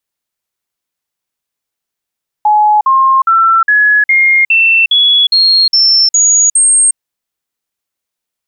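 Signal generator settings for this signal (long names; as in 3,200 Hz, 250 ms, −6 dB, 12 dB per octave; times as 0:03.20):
stepped sweep 845 Hz up, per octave 3, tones 11, 0.36 s, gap 0.05 s −5 dBFS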